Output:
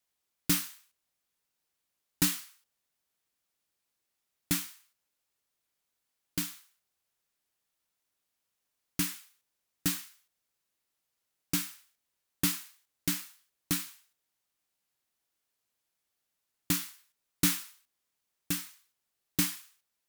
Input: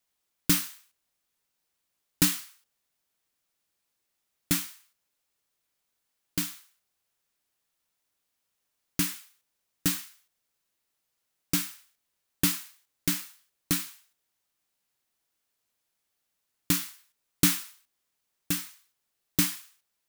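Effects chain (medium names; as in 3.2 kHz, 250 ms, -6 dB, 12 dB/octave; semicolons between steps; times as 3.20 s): one-sided clip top -16 dBFS; trim -3 dB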